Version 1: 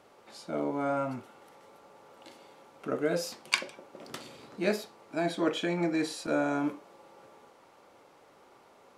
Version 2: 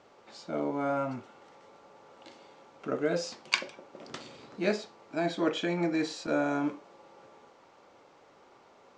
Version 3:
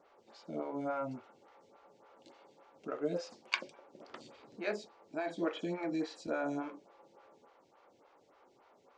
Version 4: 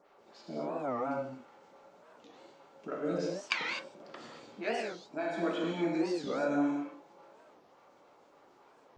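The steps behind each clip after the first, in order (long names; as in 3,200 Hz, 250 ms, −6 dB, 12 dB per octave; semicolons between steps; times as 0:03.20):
Butterworth low-pass 7,300 Hz 36 dB per octave
phaser with staggered stages 3.5 Hz; level −4.5 dB
convolution reverb, pre-delay 3 ms, DRR −2 dB; wow of a warped record 45 rpm, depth 250 cents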